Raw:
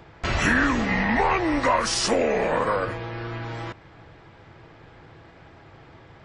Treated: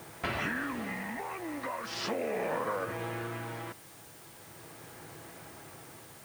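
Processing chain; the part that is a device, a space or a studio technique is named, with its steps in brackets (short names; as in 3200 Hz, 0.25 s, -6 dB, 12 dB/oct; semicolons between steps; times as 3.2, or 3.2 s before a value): medium wave at night (BPF 130–3500 Hz; compressor, threshold -30 dBFS, peak gain reduction 13 dB; tremolo 0.38 Hz, depth 54%; whine 9000 Hz -61 dBFS; white noise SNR 17 dB)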